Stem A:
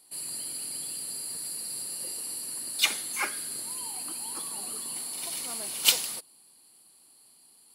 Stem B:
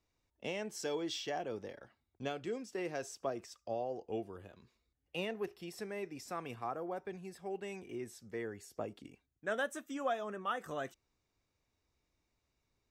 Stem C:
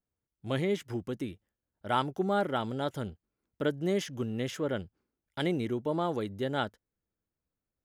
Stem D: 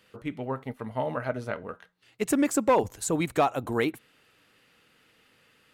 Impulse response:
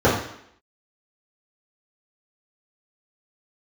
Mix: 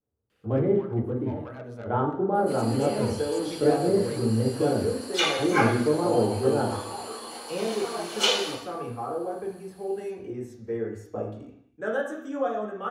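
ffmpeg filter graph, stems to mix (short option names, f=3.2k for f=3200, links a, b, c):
-filter_complex "[0:a]highpass=490,adelay=2350,volume=-8.5dB,asplit=2[a][b];[b]volume=-3.5dB[c];[1:a]adelay=2350,volume=-5.5dB,asplit=2[d][e];[e]volume=-13.5dB[f];[2:a]flanger=delay=6.4:depth=8.2:regen=-67:speed=1.8:shape=triangular,lowpass=1.2k,volume=1dB,asplit=2[g][h];[h]volume=-18.5dB[i];[3:a]asoftclip=type=tanh:threshold=-25.5dB,adelay=300,volume=-11dB,asplit=2[j][k];[k]volume=-24dB[l];[4:a]atrim=start_sample=2205[m];[c][f][i][l]amix=inputs=4:normalize=0[n];[n][m]afir=irnorm=-1:irlink=0[o];[a][d][g][j][o]amix=inputs=5:normalize=0,acrossover=split=7600[p][q];[q]acompressor=threshold=-52dB:ratio=4:attack=1:release=60[r];[p][r]amix=inputs=2:normalize=0"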